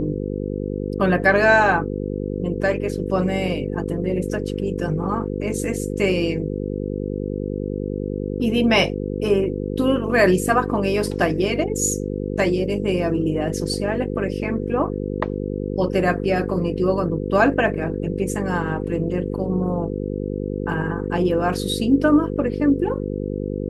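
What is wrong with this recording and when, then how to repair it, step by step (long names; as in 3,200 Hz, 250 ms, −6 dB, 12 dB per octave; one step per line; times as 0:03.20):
mains buzz 50 Hz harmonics 10 −26 dBFS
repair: hum removal 50 Hz, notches 10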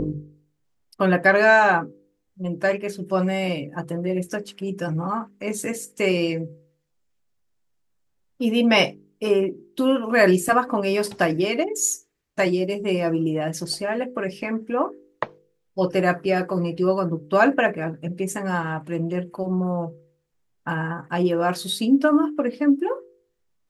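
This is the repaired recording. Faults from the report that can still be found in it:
none of them is left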